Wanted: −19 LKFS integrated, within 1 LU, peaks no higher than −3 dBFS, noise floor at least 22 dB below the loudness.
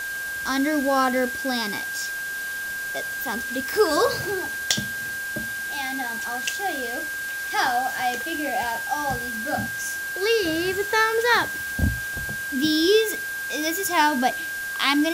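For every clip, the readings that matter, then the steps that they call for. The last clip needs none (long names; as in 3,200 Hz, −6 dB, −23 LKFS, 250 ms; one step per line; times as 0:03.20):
interfering tone 1,600 Hz; level of the tone −28 dBFS; background noise floor −30 dBFS; target noise floor −46 dBFS; integrated loudness −24.0 LKFS; sample peak −4.5 dBFS; target loudness −19.0 LKFS
→ notch filter 1,600 Hz, Q 30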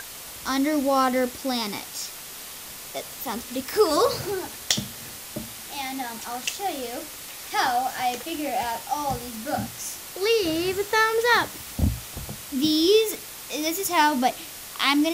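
interfering tone none found; background noise floor −39 dBFS; target noise floor −47 dBFS
→ broadband denoise 8 dB, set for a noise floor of −39 dBFS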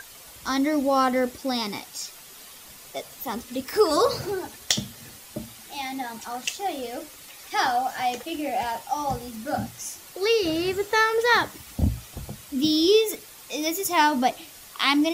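background noise floor −46 dBFS; target noise floor −47 dBFS
→ broadband denoise 6 dB, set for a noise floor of −46 dBFS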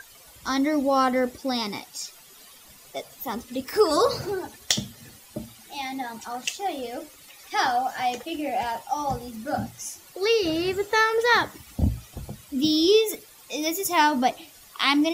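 background noise floor −50 dBFS; integrated loudness −25.0 LKFS; sample peak −5.0 dBFS; target loudness −19.0 LKFS
→ level +6 dB
brickwall limiter −3 dBFS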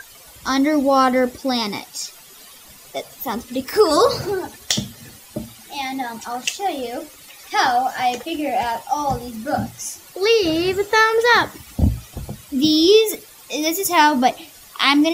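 integrated loudness −19.0 LKFS; sample peak −3.0 dBFS; background noise floor −44 dBFS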